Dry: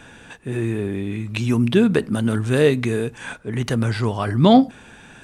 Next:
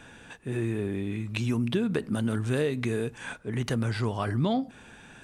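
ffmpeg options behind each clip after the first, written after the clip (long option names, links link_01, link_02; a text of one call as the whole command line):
ffmpeg -i in.wav -af "acompressor=threshold=-17dB:ratio=12,volume=-5.5dB" out.wav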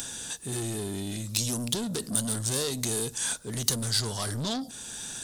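ffmpeg -i in.wav -af "acompressor=mode=upward:threshold=-41dB:ratio=2.5,asoftclip=type=tanh:threshold=-29dB,aexciter=amount=7.1:drive=8.2:freq=3600" out.wav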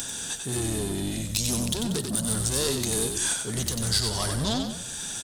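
ffmpeg -i in.wav -filter_complex "[0:a]alimiter=limit=-15dB:level=0:latency=1:release=157,asplit=6[link_01][link_02][link_03][link_04][link_05][link_06];[link_02]adelay=93,afreqshift=-45,volume=-5.5dB[link_07];[link_03]adelay=186,afreqshift=-90,volume=-12.6dB[link_08];[link_04]adelay=279,afreqshift=-135,volume=-19.8dB[link_09];[link_05]adelay=372,afreqshift=-180,volume=-26.9dB[link_10];[link_06]adelay=465,afreqshift=-225,volume=-34dB[link_11];[link_01][link_07][link_08][link_09][link_10][link_11]amix=inputs=6:normalize=0,volume=3dB" out.wav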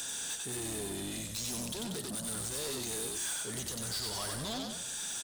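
ffmpeg -i in.wav -filter_complex "[0:a]lowshelf=frequency=260:gain=-11.5,asplit=2[link_01][link_02];[link_02]alimiter=limit=-20.5dB:level=0:latency=1:release=87,volume=-2.5dB[link_03];[link_01][link_03]amix=inputs=2:normalize=0,asoftclip=type=tanh:threshold=-26.5dB,volume=-6.5dB" out.wav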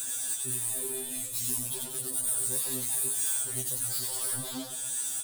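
ffmpeg -i in.wav -af "aexciter=amount=4.9:drive=5.1:freq=8000,afftfilt=real='re*2.45*eq(mod(b,6),0)':imag='im*2.45*eq(mod(b,6),0)':win_size=2048:overlap=0.75" out.wav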